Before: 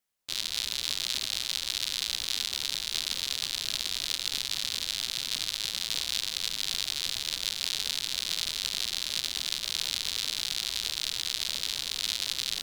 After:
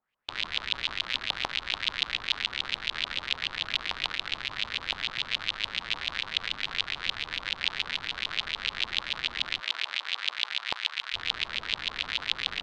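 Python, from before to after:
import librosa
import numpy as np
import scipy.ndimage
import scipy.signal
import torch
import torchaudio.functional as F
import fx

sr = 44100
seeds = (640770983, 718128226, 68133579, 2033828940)

y = fx.highpass(x, sr, hz=fx.line((9.59, 520.0), (11.13, 1100.0)), slope=12, at=(9.59, 11.13), fade=0.02)
y = fx.filter_lfo_lowpass(y, sr, shape='saw_up', hz=6.9, low_hz=890.0, high_hz=3200.0, q=3.3)
y = y * librosa.db_to_amplitude(2.5)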